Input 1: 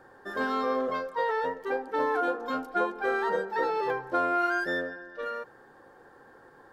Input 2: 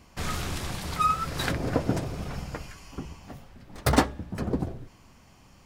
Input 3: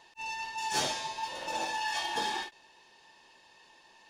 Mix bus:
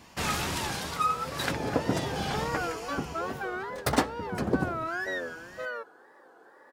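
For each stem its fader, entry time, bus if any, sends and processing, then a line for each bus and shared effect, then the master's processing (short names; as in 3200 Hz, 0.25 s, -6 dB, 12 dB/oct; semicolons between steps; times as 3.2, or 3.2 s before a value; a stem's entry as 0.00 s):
-5.5 dB, 0.40 s, bus A, no send, HPF 260 Hz 12 dB/oct
+1.0 dB, 0.00 s, no bus, no send, dry
-4.0 dB, 0.00 s, bus A, no send, dry
bus A: 0.0 dB, wow and flutter 140 cents; limiter -29 dBFS, peak gain reduction 10 dB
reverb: off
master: HPF 180 Hz 6 dB/oct; vocal rider within 5 dB 0.5 s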